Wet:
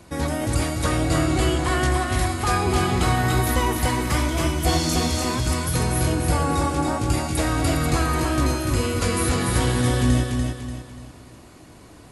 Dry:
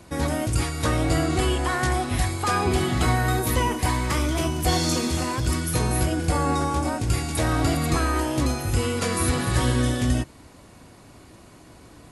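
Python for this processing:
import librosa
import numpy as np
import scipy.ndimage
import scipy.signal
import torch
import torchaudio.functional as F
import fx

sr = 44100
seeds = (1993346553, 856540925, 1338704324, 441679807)

y = fx.echo_feedback(x, sr, ms=292, feedback_pct=39, wet_db=-4.0)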